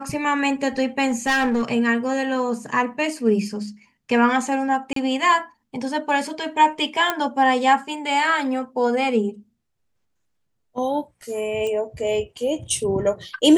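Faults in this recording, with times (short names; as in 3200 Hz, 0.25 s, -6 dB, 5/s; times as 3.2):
1.06–1.63 clipped -16.5 dBFS
4.93–4.96 gap 33 ms
7.1 pop -6 dBFS
11.67 pop -18 dBFS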